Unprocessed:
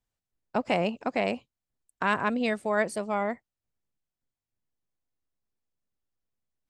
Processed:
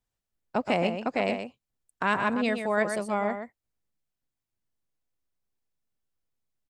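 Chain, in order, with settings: delay 124 ms -7.5 dB

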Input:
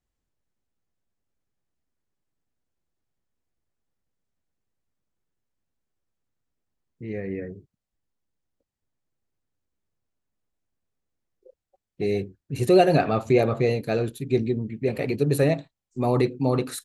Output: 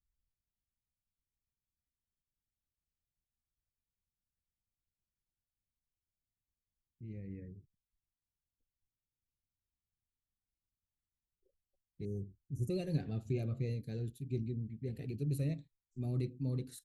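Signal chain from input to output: 12.05–12.70 s: elliptic band-stop 1.4–6 kHz, stop band 40 dB; amplifier tone stack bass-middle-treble 10-0-1; Shepard-style phaser falling 1.1 Hz; trim +3.5 dB

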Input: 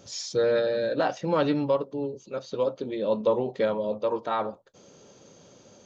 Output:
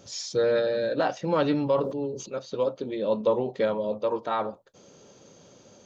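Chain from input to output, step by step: 1.48–2.34 s: decay stretcher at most 67 dB/s

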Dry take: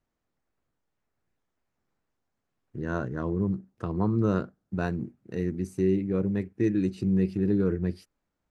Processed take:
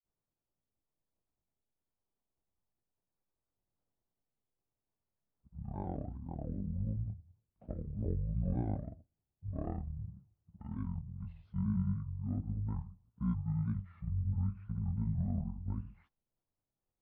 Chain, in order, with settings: low-pass 2.9 kHz 12 dB/octave; granulator, spray 21 ms, pitch spread up and down by 3 st; speed mistake 15 ips tape played at 7.5 ips; trim -8.5 dB

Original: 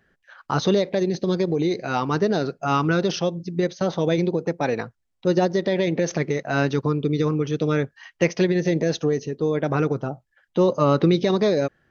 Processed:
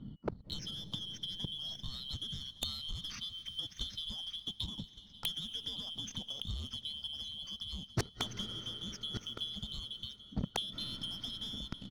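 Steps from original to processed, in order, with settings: four frequency bands reordered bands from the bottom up 2413; level-controlled noise filter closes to 1.5 kHz, open at -20.5 dBFS; FFT filter 220 Hz 0 dB, 360 Hz -20 dB, 1.5 kHz -17 dB, 3.7 kHz -18 dB, 5.8 kHz -12 dB; transient shaper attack -1 dB, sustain +5 dB; waveshaping leveller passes 2; compression 6:1, threshold -34 dBFS, peak gain reduction 9.5 dB; transient shaper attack +7 dB, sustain -7 dB; inverted gate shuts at -37 dBFS, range -37 dB; gain riding within 3 dB 2 s; delay 1165 ms -16 dB; on a send at -16.5 dB: reverberation RT60 5.0 s, pre-delay 155 ms; on the sum: sine folder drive 16 dB, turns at -32.5 dBFS; trim +8 dB

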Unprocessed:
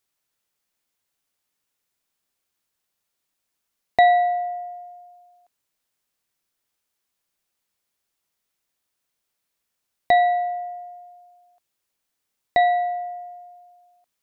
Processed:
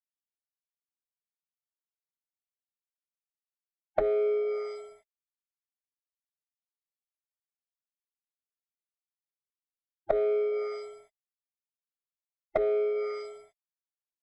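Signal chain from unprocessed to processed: distance through air 210 m; compression 20:1, threshold -21 dBFS, peak gain reduction 10 dB; level-controlled noise filter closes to 480 Hz, open at -26 dBFS; crossover distortion -45 dBFS; frequency shift -64 Hz; dynamic bell 2.1 kHz, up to +5 dB, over -49 dBFS, Q 3.4; low-pass that closes with the level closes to 680 Hz, closed at -25 dBFS; formant-preserving pitch shift -7.5 st; trim +2 dB

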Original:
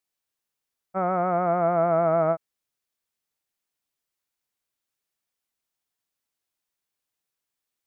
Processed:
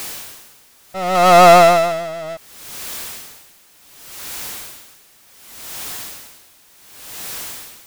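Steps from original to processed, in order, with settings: 1.15–1.92 s: peaking EQ 2.1 kHz +7 dB 2.3 oct; power-law waveshaper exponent 0.35; logarithmic tremolo 0.68 Hz, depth 22 dB; trim +8 dB

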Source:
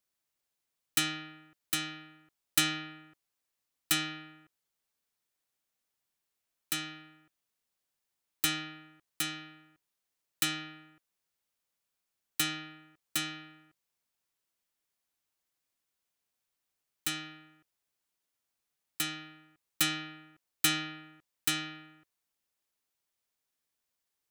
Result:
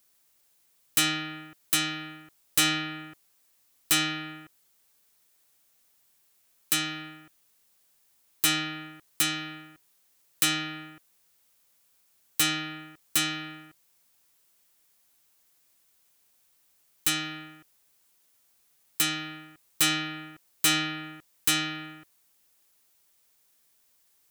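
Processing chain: treble shelf 6.9 kHz +7.5 dB; in parallel at +1 dB: compression, threshold -41 dBFS, peak gain reduction 23 dB; on the sum: saturation -23.5 dBFS, distortion -5 dB; trim +6.5 dB

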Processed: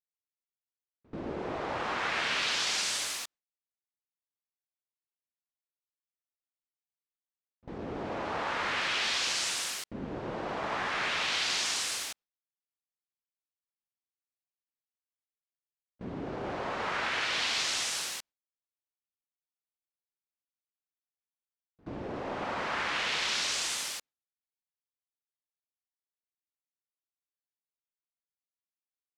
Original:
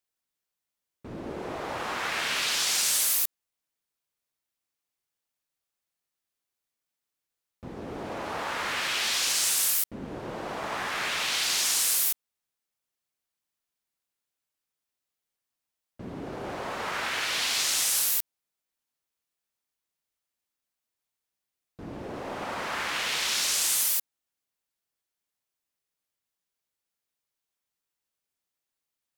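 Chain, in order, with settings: gate with hold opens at -31 dBFS; distance through air 97 m

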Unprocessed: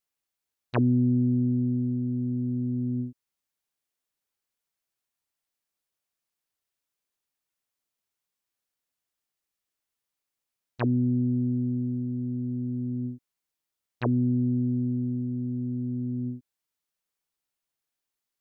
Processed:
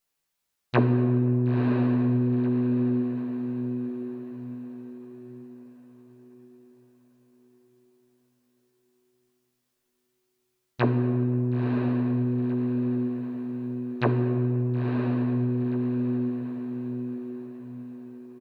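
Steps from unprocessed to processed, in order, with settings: doubling 14 ms -4 dB; echo that smears into a reverb 978 ms, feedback 42%, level -5 dB; on a send at -7 dB: reverberation RT60 2.6 s, pre-delay 5 ms; on the sum: trim +4.5 dB

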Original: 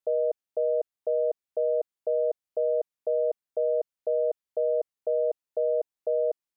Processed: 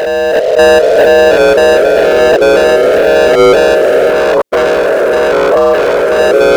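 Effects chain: spectrogram pixelated in time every 200 ms; bass shelf 280 Hz -7.5 dB; waveshaping leveller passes 5; level rider gain up to 15 dB; ever faster or slower copies 649 ms, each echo -2 st, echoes 2; loudness maximiser +10 dB; 4.10–6.19 s: transformer saturation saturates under 560 Hz; trim -1 dB

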